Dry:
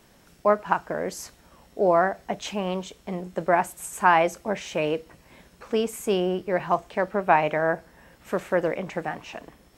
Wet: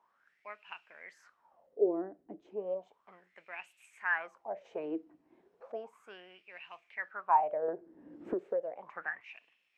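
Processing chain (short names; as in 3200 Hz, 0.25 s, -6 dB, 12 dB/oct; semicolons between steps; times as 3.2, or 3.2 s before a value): wah 0.34 Hz 300–2700 Hz, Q 9.3; 4.65–5.72 spectral gain 640–12000 Hz +10 dB; 7.68–9.21 three-band squash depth 100%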